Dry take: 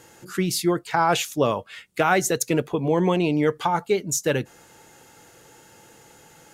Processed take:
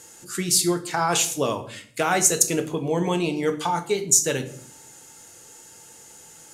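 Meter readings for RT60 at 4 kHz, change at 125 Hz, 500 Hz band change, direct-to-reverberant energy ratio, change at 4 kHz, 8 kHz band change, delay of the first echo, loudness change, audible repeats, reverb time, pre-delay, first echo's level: 0.45 s, −3.0 dB, −2.5 dB, 7.0 dB, +3.0 dB, +9.0 dB, no echo audible, +1.0 dB, no echo audible, 0.55 s, 4 ms, no echo audible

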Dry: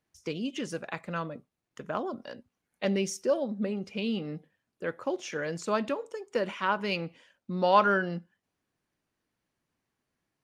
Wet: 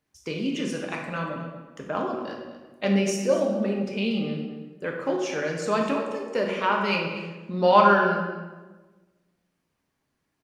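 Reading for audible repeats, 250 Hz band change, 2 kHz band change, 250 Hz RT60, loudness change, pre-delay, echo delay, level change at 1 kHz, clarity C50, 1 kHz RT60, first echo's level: 1, +6.5 dB, +5.5 dB, 1.5 s, +5.5 dB, 5 ms, 236 ms, +6.0 dB, 3.0 dB, 1.2 s, −13.0 dB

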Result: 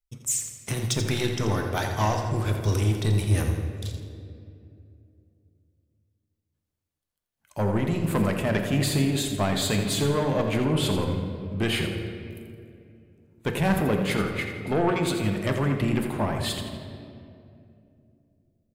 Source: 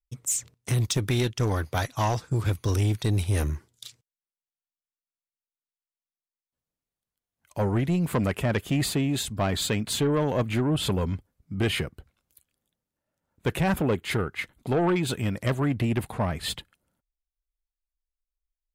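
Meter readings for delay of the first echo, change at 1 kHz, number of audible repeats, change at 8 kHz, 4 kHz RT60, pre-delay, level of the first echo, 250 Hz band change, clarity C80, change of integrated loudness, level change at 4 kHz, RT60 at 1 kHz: 84 ms, +1.5 dB, 2, +1.0 dB, 1.4 s, 3 ms, −9.0 dB, +1.5 dB, 5.0 dB, +1.0 dB, +1.5 dB, 2.1 s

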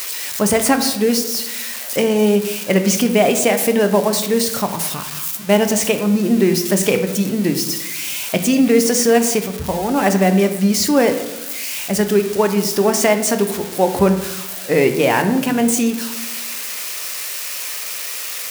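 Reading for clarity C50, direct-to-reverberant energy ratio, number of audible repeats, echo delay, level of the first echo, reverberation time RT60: 9.5 dB, 6.5 dB, no echo audible, no echo audible, no echo audible, 1.0 s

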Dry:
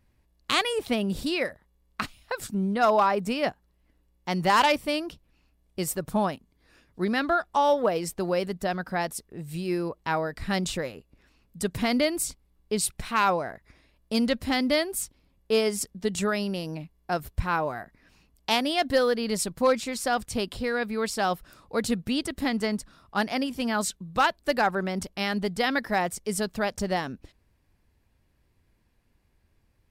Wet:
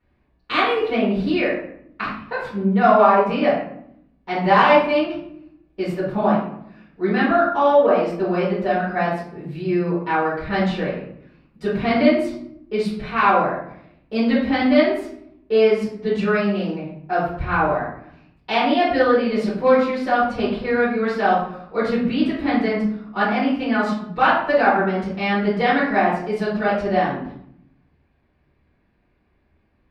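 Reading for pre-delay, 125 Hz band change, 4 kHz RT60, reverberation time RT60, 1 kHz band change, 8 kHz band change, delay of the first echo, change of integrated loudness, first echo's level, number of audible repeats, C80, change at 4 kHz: 4 ms, +7.0 dB, 0.45 s, 0.70 s, +8.0 dB, below −15 dB, no echo audible, +7.5 dB, no echo audible, no echo audible, 6.5 dB, 0.0 dB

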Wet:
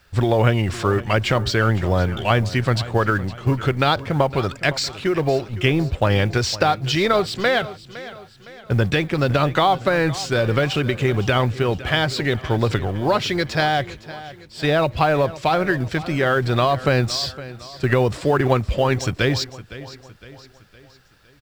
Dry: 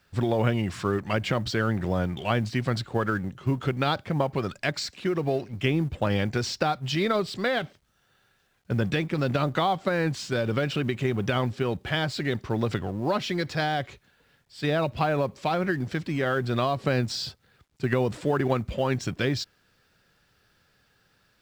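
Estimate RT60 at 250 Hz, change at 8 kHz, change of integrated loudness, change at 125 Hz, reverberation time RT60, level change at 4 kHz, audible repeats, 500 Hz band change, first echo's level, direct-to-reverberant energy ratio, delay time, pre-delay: no reverb audible, +8.0 dB, +7.0 dB, +7.5 dB, no reverb audible, +8.0 dB, 3, +7.0 dB, −16.5 dB, no reverb audible, 511 ms, no reverb audible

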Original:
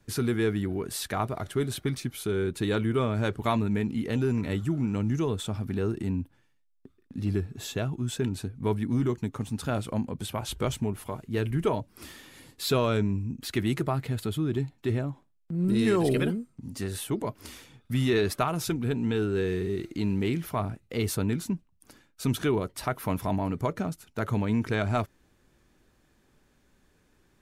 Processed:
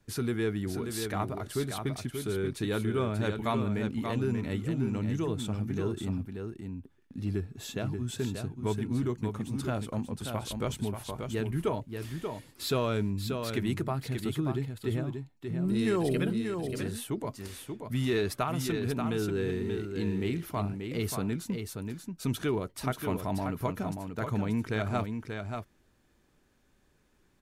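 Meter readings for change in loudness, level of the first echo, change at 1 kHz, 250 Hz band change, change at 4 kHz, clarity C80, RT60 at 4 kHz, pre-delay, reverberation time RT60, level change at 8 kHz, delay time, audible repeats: −3.5 dB, −6.0 dB, −3.0 dB, −3.0 dB, −3.0 dB, no reverb audible, no reverb audible, no reverb audible, no reverb audible, −3.0 dB, 584 ms, 1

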